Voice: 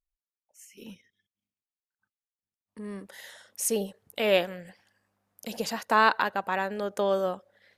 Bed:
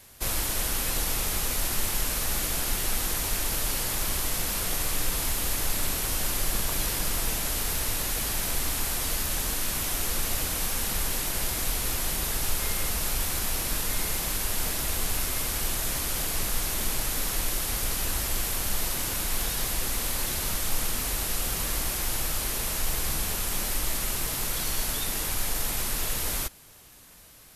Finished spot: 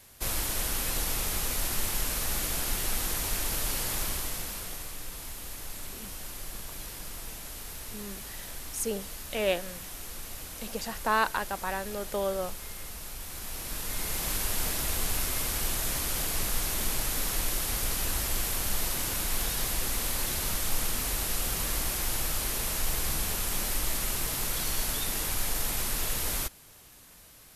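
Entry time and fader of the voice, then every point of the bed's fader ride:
5.15 s, −4.5 dB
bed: 0:03.99 −2.5 dB
0:04.96 −12.5 dB
0:13.20 −12.5 dB
0:14.31 −1.5 dB

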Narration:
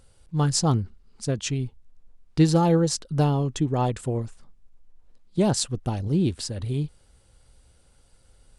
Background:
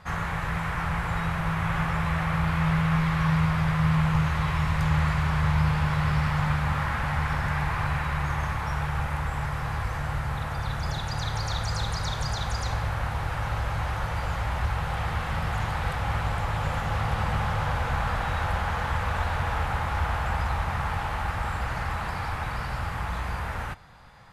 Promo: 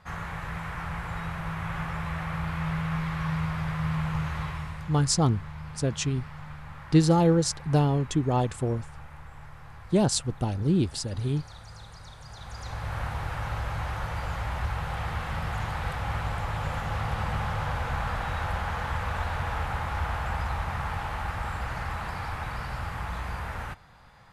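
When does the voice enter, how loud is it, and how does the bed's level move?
4.55 s, −1.0 dB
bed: 0:04.42 −6 dB
0:04.99 −17 dB
0:12.22 −17 dB
0:12.97 −3 dB

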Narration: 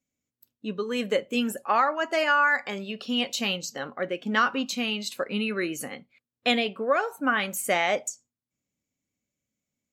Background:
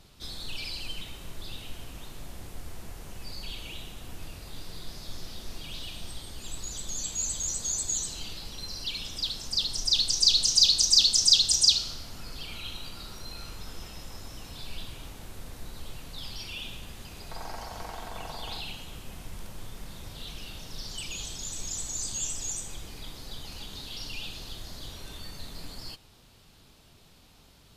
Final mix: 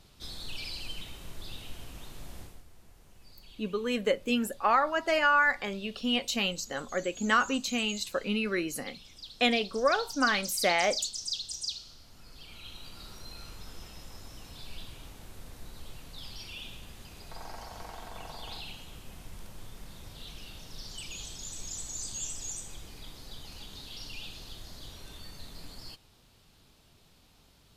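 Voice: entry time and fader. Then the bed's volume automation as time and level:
2.95 s, −2.0 dB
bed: 0:02.41 −2.5 dB
0:02.66 −15 dB
0:11.84 −15 dB
0:13.05 −4.5 dB

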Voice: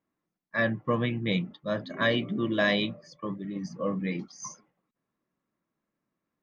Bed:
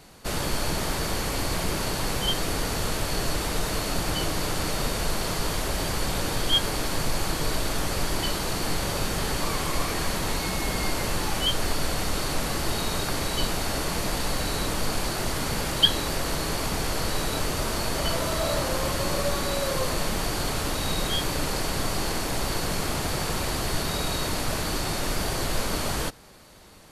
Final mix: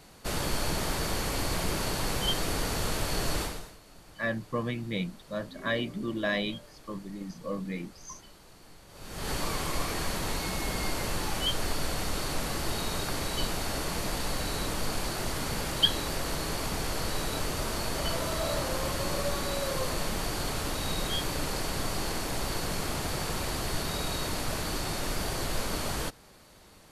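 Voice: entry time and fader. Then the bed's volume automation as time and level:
3.65 s, −4.5 dB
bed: 0:03.42 −3 dB
0:03.78 −26 dB
0:08.87 −26 dB
0:09.30 −4.5 dB

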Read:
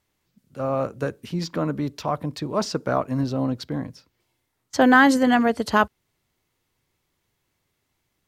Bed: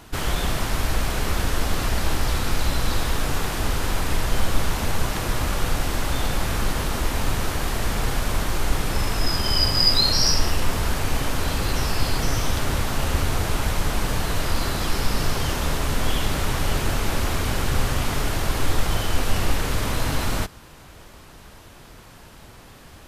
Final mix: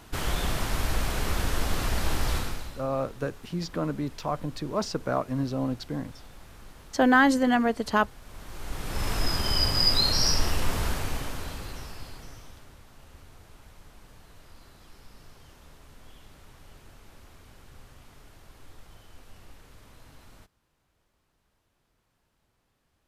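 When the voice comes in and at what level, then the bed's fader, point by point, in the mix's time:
2.20 s, −4.5 dB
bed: 0:02.37 −4.5 dB
0:02.87 −25 dB
0:08.19 −25 dB
0:09.10 −4.5 dB
0:10.85 −4.5 dB
0:12.77 −28.5 dB

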